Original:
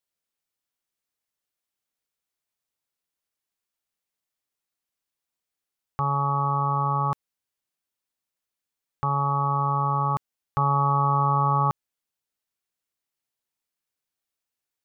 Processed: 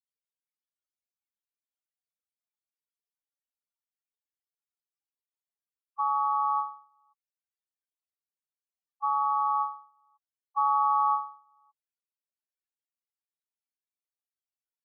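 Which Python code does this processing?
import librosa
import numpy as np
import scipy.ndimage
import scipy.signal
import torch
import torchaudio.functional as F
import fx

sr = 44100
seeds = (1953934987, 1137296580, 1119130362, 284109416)

y = fx.spec_topn(x, sr, count=8)
y = scipy.signal.sosfilt(scipy.signal.cheby2(4, 50, 170.0, 'highpass', fs=sr, output='sos'), y)
y = fx.end_taper(y, sr, db_per_s=130.0)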